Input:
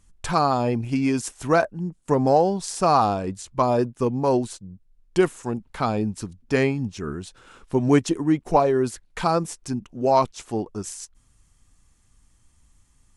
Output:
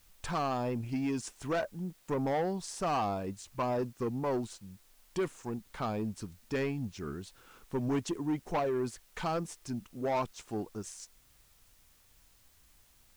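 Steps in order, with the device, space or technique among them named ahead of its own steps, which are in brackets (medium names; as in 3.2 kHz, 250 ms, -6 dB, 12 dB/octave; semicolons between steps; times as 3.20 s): compact cassette (saturation -17.5 dBFS, distortion -11 dB; low-pass 8.5 kHz; wow and flutter; white noise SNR 30 dB); trim -8.5 dB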